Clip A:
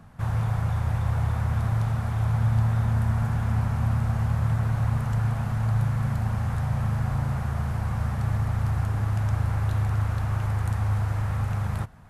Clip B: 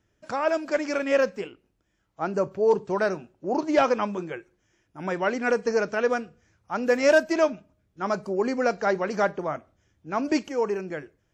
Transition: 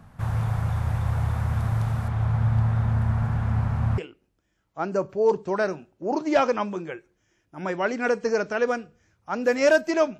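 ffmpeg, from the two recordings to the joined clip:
-filter_complex "[0:a]asettb=1/sr,asplit=3[a][b][c];[a]atrim=end=2.084[d];[b]atrim=start=2.08:end=3.98,asetpts=PTS-STARTPTS,afade=t=in:d=0.004:c=qsin,afade=t=out:st=1.896:d=0.004:c=qsin,aemphasis=mode=reproduction:type=50fm[e];[c]atrim=start=3.976[f];[d][e]acrossfade=d=0.004:c1=hsin:c2=qsin[g];[g][f]acrossfade=d=0.004:c1=qsin:c2=hsin,apad=whole_dur=10.19,atrim=end=10.19,atrim=end=3.982[h];[1:a]atrim=start=1.398:end=7.61[i];[h][i]acrossfade=d=0.004:c1=hsin:c2=hsin"

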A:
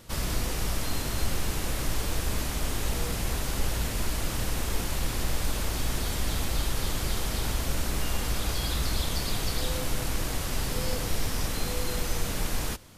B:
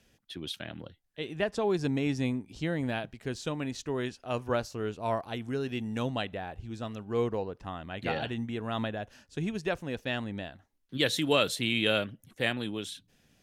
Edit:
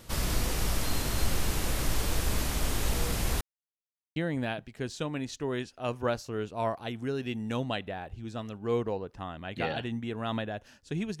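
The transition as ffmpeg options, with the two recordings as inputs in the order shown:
-filter_complex "[0:a]apad=whole_dur=11.2,atrim=end=11.2,asplit=2[a][b];[a]atrim=end=3.41,asetpts=PTS-STARTPTS,afade=t=out:st=3.406:d=0.004:c=hsin[c];[b]atrim=start=3.41:end=4.16,asetpts=PTS-STARTPTS,volume=0[d];[1:a]atrim=start=2.62:end=9.66,asetpts=PTS-STARTPTS,afade=t=in:d=0.004:c=hsin[e];[c][d][e]concat=n=3:v=0:a=1"

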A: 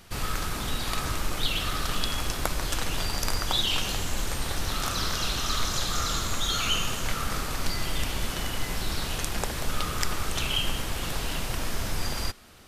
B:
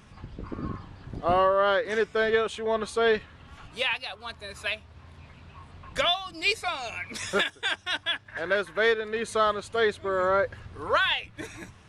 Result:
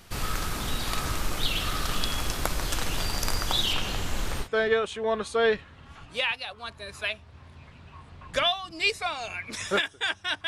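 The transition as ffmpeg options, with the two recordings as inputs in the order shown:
-filter_complex "[0:a]asettb=1/sr,asplit=3[a][b][c];[a]atrim=end=3.734[d];[b]atrim=start=3.73:end=4.49,asetpts=PTS-STARTPTS,afade=t=in:d=0.004:c=qsin,afade=t=out:st=0.756:d=0.004:c=qsin,acrossover=split=3900[e][f];[f]acompressor=threshold=-40dB:ratio=4:attack=1:release=60[g];[e][g]amix=inputs=2:normalize=0[h];[c]atrim=start=4.486[i];[d][h]acrossfade=d=0.004:c1=hsin:c2=qsin[j];[j][i]acrossfade=d=0.004:c1=qsin:c2=hsin,apad=whole_dur=10.47,atrim=end=10.47,atrim=end=4.49,asetpts=PTS-STARTPTS[k];[1:a]atrim=start=2.01:end=8.09,asetpts=PTS-STARTPTS[l];[k][l]acrossfade=d=0.1:c1=tri:c2=tri"

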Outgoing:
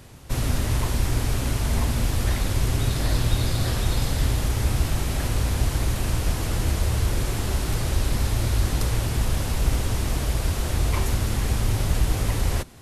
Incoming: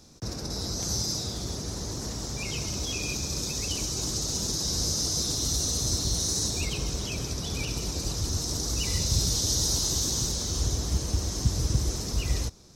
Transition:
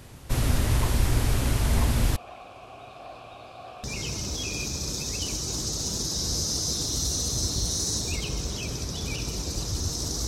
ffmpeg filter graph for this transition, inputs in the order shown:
-filter_complex "[0:a]asettb=1/sr,asplit=3[a][b][c];[a]atrim=end=2.164[d];[b]atrim=start=2.16:end=3.84,asetpts=PTS-STARTPTS,afade=t=in:d=0.004:c=qsin,afade=t=out:st=1.676:d=0.004:c=qsin,asplit=3[e][f][g];[e]bandpass=f=730:t=q:w=8,volume=0dB[h];[f]bandpass=f=1.09k:t=q:w=8,volume=-6dB[i];[g]bandpass=f=2.44k:t=q:w=8,volume=-9dB[j];[h][i][j]amix=inputs=3:normalize=0[k];[c]atrim=start=3.836[l];[d][k]acrossfade=d=0.004:c1=hsin:c2=qsin[m];[m][l]acrossfade=d=0.004:c1=qsin:c2=hsin,apad=whole_dur=10.27,atrim=end=10.27,atrim=end=3.842[n];[1:a]atrim=start=2.328:end=8.76[o];[n][o]acrossfade=d=0.004:c1=hsin:c2=hsin"

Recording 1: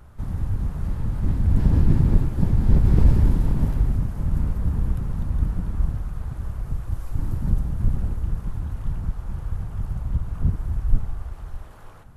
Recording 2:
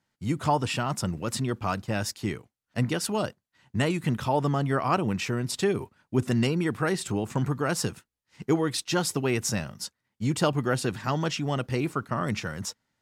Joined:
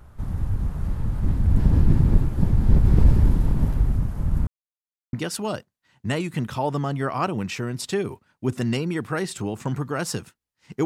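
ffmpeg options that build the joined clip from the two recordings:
-filter_complex "[0:a]apad=whole_dur=10.85,atrim=end=10.85,asplit=2[a][b];[a]atrim=end=4.47,asetpts=PTS-STARTPTS,afade=t=out:st=4.466:d=0.004:c=hsin[c];[b]atrim=start=4.47:end=5.13,asetpts=PTS-STARTPTS,volume=0[d];[1:a]atrim=start=2.83:end=8.55,asetpts=PTS-STARTPTS,afade=t=in:d=0.004:c=hsin[e];[c][d][e]concat=n=3:v=0:a=1"

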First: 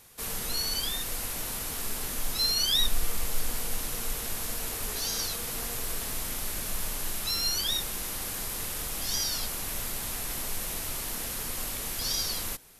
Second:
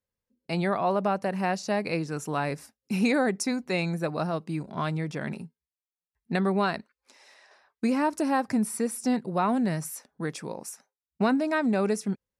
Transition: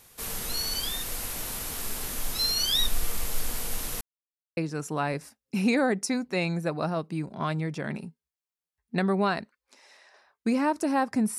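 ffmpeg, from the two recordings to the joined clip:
-filter_complex "[0:a]apad=whole_dur=11.38,atrim=end=11.38,asplit=2[a][b];[a]atrim=end=4.01,asetpts=PTS-STARTPTS,afade=t=out:st=4.006:d=0.004:c=hsin[c];[b]atrim=start=4.01:end=4.57,asetpts=PTS-STARTPTS,volume=0[d];[1:a]atrim=start=1.94:end=8.75,asetpts=PTS-STARTPTS,afade=t=in:d=0.004:c=hsin[e];[c][d][e]concat=n=3:v=0:a=1"

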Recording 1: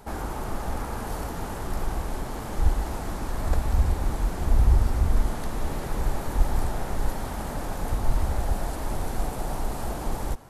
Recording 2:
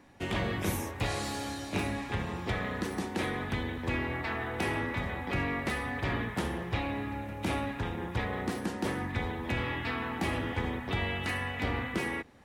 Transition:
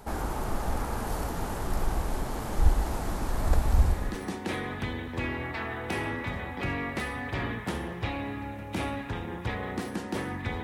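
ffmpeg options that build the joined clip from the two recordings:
-filter_complex "[0:a]apad=whole_dur=10.63,atrim=end=10.63,atrim=end=4.24,asetpts=PTS-STARTPTS[a];[1:a]atrim=start=2.54:end=9.33,asetpts=PTS-STARTPTS[b];[a][b]acrossfade=d=0.4:c1=tri:c2=tri"

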